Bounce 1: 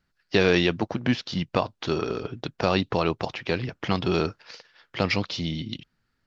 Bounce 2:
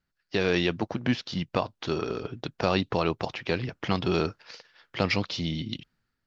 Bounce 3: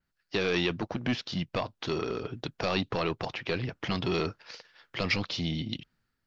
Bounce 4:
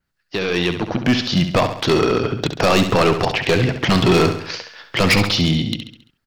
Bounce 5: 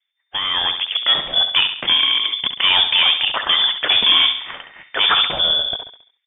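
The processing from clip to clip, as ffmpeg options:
ffmpeg -i in.wav -af "dynaudnorm=framelen=140:gausssize=7:maxgain=9.5dB,volume=-7.5dB" out.wav
ffmpeg -i in.wav -filter_complex "[0:a]acrossover=split=2000[link_01][link_02];[link_01]asoftclip=type=tanh:threshold=-23dB[link_03];[link_03][link_02]amix=inputs=2:normalize=0,adynamicequalizer=threshold=0.00398:dfrequency=5000:dqfactor=0.7:tfrequency=5000:tqfactor=0.7:attack=5:release=100:ratio=0.375:range=2.5:mode=cutabove:tftype=highshelf" out.wav
ffmpeg -i in.wav -filter_complex "[0:a]dynaudnorm=framelen=230:gausssize=9:maxgain=12dB,asoftclip=type=hard:threshold=-15.5dB,asplit=2[link_01][link_02];[link_02]aecho=0:1:68|136|204|272|340:0.355|0.17|0.0817|0.0392|0.0188[link_03];[link_01][link_03]amix=inputs=2:normalize=0,volume=5.5dB" out.wav
ffmpeg -i in.wav -filter_complex "[0:a]acrossover=split=230|2500[link_01][link_02][link_03];[link_03]acrusher=bits=6:mix=0:aa=0.000001[link_04];[link_01][link_02][link_04]amix=inputs=3:normalize=0,lowpass=frequency=3100:width_type=q:width=0.5098,lowpass=frequency=3100:width_type=q:width=0.6013,lowpass=frequency=3100:width_type=q:width=0.9,lowpass=frequency=3100:width_type=q:width=2.563,afreqshift=-3600" out.wav

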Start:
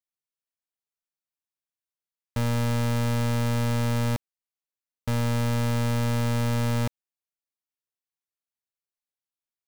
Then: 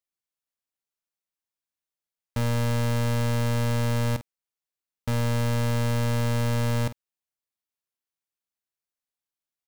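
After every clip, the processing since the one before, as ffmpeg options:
ffmpeg -i in.wav -filter_complex "[0:a]asplit=2[link_01][link_02];[link_02]adelay=49,volume=-13.5dB[link_03];[link_01][link_03]amix=inputs=2:normalize=0" out.wav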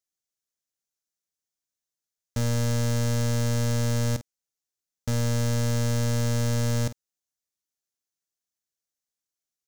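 ffmpeg -i in.wav -af "equalizer=frequency=1000:width_type=o:width=0.67:gain=-7,equalizer=frequency=2500:width_type=o:width=0.67:gain=-5,equalizer=frequency=6300:width_type=o:width=0.67:gain=8" out.wav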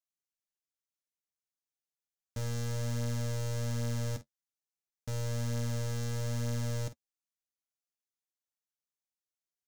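ffmpeg -i in.wav -af "flanger=delay=6.3:depth=4.8:regen=-36:speed=0.58:shape=sinusoidal,volume=-6dB" out.wav

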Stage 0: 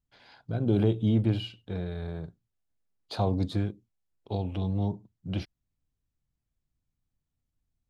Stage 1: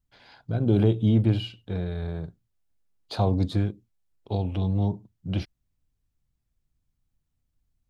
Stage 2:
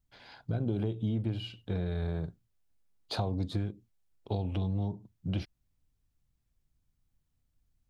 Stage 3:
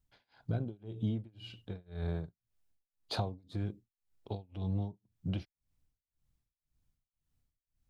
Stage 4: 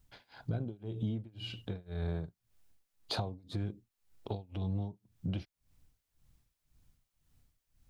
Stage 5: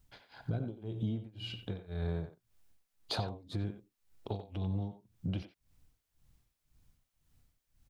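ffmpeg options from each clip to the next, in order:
ffmpeg -i in.wav -af "lowshelf=frequency=81:gain=5.5,volume=2.5dB" out.wav
ffmpeg -i in.wav -af "acompressor=threshold=-29dB:ratio=5" out.wav
ffmpeg -i in.wav -af "tremolo=f=1.9:d=0.98,volume=-1dB" out.wav
ffmpeg -i in.wav -af "acompressor=threshold=-52dB:ratio=2,volume=10.5dB" out.wav
ffmpeg -i in.wav -filter_complex "[0:a]asplit=2[link_01][link_02];[link_02]adelay=90,highpass=300,lowpass=3400,asoftclip=type=hard:threshold=-29.5dB,volume=-9dB[link_03];[link_01][link_03]amix=inputs=2:normalize=0" out.wav

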